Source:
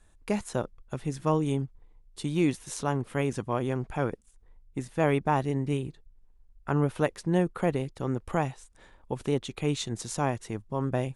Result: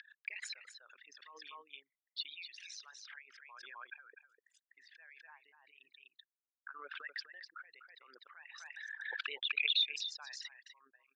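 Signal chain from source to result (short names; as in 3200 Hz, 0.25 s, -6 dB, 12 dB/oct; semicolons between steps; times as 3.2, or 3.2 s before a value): formant sharpening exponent 3; Chebyshev band-pass 1600–4900 Hz, order 4; on a send: echo 0.249 s -10 dB; on the sum: backwards sustainer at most 20 dB/s; gain +4 dB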